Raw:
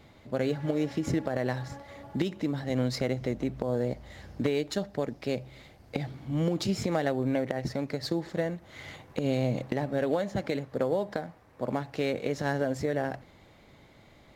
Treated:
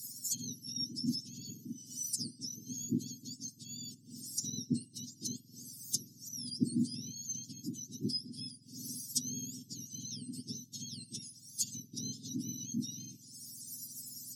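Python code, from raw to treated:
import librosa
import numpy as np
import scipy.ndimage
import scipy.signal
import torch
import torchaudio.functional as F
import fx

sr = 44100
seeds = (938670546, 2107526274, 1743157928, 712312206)

p1 = fx.octave_mirror(x, sr, pivot_hz=1300.0)
p2 = scipy.signal.sosfilt(scipy.signal.cheby1(4, 1.0, [260.0, 5100.0], 'bandstop', fs=sr, output='sos'), p1)
p3 = fx.tilt_eq(p2, sr, slope=3.0)
p4 = fx.rider(p3, sr, range_db=3, speed_s=2.0)
p5 = p3 + (p4 * 10.0 ** (0.0 / 20.0))
p6 = fx.env_lowpass_down(p5, sr, base_hz=1500.0, full_db=-25.5)
y = p6 * 10.0 ** (6.5 / 20.0)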